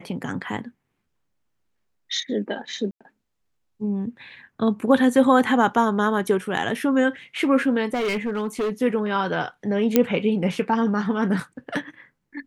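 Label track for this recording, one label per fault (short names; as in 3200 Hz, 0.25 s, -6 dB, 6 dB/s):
2.910000	3.010000	gap 96 ms
7.930000	8.700000	clipped -21 dBFS
9.960000	9.960000	pop -3 dBFS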